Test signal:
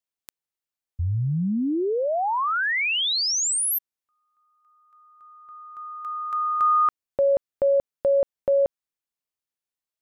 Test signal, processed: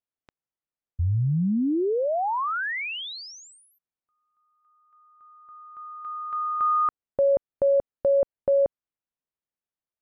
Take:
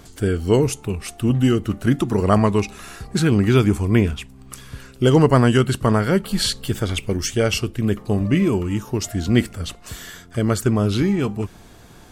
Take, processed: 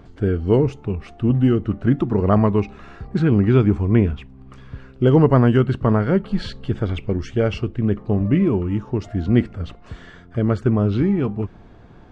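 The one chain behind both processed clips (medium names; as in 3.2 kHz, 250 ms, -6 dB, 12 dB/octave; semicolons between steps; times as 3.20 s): tape spacing loss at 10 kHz 37 dB; trim +1.5 dB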